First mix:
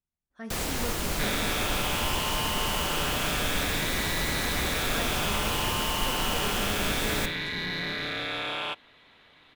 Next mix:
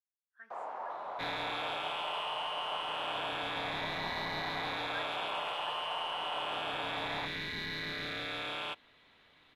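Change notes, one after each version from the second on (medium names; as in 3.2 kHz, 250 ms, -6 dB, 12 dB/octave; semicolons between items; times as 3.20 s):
speech: add band-pass filter 1.6 kHz, Q 7.6; first sound: add Butterworth band-pass 840 Hz, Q 1.7; second sound -6.5 dB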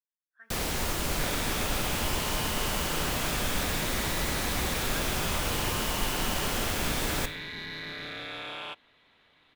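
first sound: remove Butterworth band-pass 840 Hz, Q 1.7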